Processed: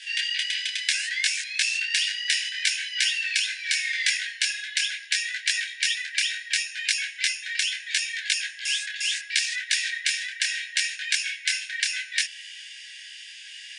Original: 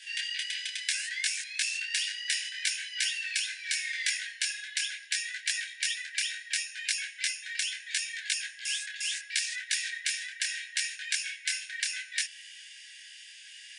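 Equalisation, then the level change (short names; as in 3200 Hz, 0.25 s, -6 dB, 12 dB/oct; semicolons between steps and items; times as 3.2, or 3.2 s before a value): band-pass 2900 Hz, Q 0.51; +7.5 dB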